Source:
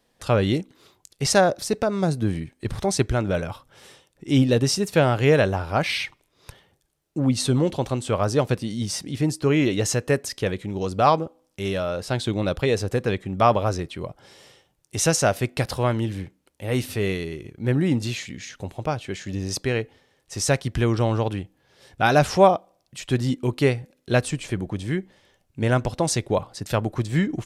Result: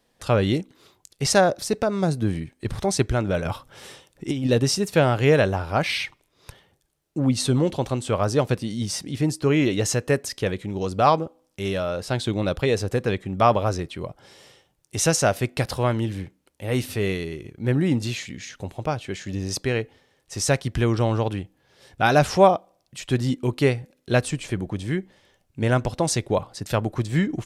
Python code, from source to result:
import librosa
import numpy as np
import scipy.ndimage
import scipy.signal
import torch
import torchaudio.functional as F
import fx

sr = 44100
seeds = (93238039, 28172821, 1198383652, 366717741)

y = fx.over_compress(x, sr, threshold_db=-24.0, ratio=-1.0, at=(3.45, 4.47))